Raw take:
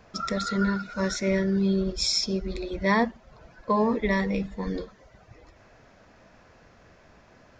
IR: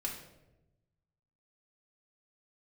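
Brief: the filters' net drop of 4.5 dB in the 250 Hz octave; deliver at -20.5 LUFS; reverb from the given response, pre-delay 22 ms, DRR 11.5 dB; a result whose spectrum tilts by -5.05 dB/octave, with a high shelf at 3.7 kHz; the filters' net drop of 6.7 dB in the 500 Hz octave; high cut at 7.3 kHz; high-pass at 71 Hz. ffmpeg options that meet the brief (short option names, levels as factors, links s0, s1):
-filter_complex "[0:a]highpass=71,lowpass=7300,equalizer=f=250:t=o:g=-5,equalizer=f=500:t=o:g=-7,highshelf=f=3700:g=-6.5,asplit=2[s0][s1];[1:a]atrim=start_sample=2205,adelay=22[s2];[s1][s2]afir=irnorm=-1:irlink=0,volume=0.224[s3];[s0][s3]amix=inputs=2:normalize=0,volume=2.99"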